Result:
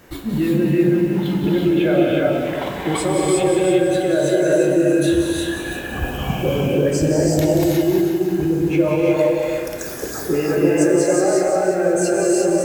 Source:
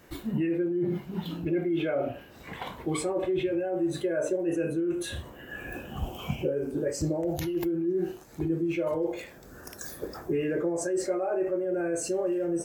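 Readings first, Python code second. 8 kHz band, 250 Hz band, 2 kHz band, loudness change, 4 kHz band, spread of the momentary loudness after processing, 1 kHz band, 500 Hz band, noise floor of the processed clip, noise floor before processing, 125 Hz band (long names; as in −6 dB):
+13.0 dB, +12.0 dB, +13.0 dB, +12.0 dB, +13.0 dB, 8 LU, +13.5 dB, +12.0 dB, −28 dBFS, −49 dBFS, +13.5 dB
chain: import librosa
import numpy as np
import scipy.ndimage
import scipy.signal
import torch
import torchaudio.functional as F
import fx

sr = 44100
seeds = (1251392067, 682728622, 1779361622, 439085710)

y = x + 10.0 ** (-9.0 / 20.0) * np.pad(x, (int(325 * sr / 1000.0), 0))[:len(x)]
y = fx.rev_gated(y, sr, seeds[0], gate_ms=390, shape='rising', drr_db=-2.5)
y = fx.echo_crushed(y, sr, ms=182, feedback_pct=55, bits=8, wet_db=-8)
y = y * 10.0 ** (7.5 / 20.0)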